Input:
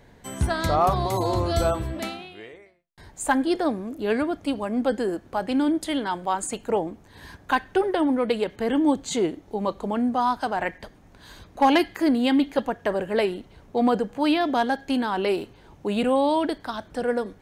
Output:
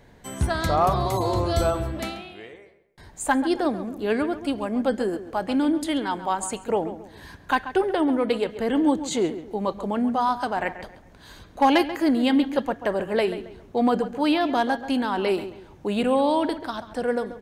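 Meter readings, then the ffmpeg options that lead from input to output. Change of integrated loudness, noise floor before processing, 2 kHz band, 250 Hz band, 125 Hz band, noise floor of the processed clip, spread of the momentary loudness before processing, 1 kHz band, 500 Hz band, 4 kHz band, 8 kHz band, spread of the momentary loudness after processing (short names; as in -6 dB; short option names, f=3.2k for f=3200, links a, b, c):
0.0 dB, -53 dBFS, 0.0 dB, +0.5 dB, +0.5 dB, -50 dBFS, 10 LU, 0.0 dB, 0.0 dB, 0.0 dB, 0.0 dB, 11 LU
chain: -filter_complex "[0:a]asplit=2[a][b];[b]adelay=136,lowpass=f=2.7k:p=1,volume=-12dB,asplit=2[c][d];[d]adelay=136,lowpass=f=2.7k:p=1,volume=0.34,asplit=2[e][f];[f]adelay=136,lowpass=f=2.7k:p=1,volume=0.34[g];[a][c][e][g]amix=inputs=4:normalize=0"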